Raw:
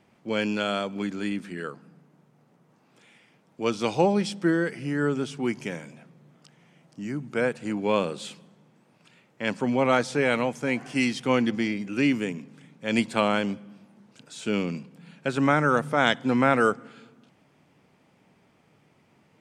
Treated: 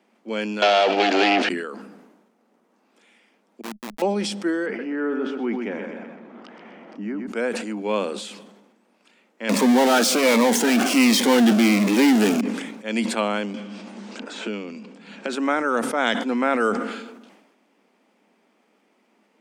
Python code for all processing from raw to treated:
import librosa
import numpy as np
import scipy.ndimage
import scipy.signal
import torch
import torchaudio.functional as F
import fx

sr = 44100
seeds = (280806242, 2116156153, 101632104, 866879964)

y = fx.chain(x, sr, fx.leveller(passes=5),
    fx.cabinet(low_hz=340.0, low_slope=24, high_hz=5600.0, hz=(720.0, 1100.0, 2800.0, 4400.0), db=(8, -6, 8, 3)),
    fx.band_squash(depth_pct=100), at=(0.62, 1.49))
y = fx.chain(y, sr, fx.schmitt(flips_db=-20.5),
    fx.peak_eq(hz=440.0, db=-8.5, octaves=0.91), at=(3.61, 4.02))
y = fx.chain(y, sr, fx.lowpass(hz=2000.0, slope=12),
    fx.echo_feedback(ms=127, feedback_pct=36, wet_db=-8),
    fx.env_flatten(amount_pct=50), at=(4.66, 7.27))
y = fx.chain(y, sr, fx.power_curve(exponent=0.35),
    fx.notch_cascade(direction='falling', hz=1.3), at=(9.49, 12.41))
y = fx.chain(y, sr, fx.steep_lowpass(hz=8400.0, slope=36),
    fx.high_shelf(hz=5600.0, db=-4.0),
    fx.band_squash(depth_pct=100), at=(13.54, 15.33))
y = scipy.signal.sosfilt(scipy.signal.ellip(4, 1.0, 40, 210.0, 'highpass', fs=sr, output='sos'), y)
y = fx.sustainer(y, sr, db_per_s=50.0)